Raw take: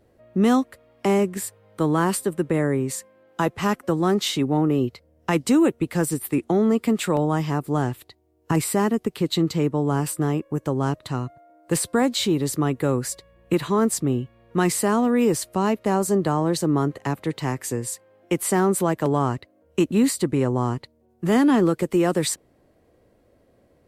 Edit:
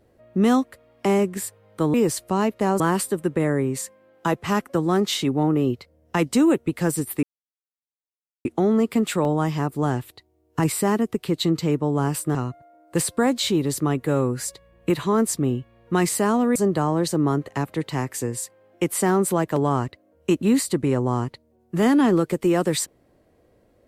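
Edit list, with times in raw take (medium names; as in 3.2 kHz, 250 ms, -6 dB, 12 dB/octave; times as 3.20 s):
6.37 s: insert silence 1.22 s
10.27–11.11 s: delete
12.82–13.07 s: stretch 1.5×
15.19–16.05 s: move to 1.94 s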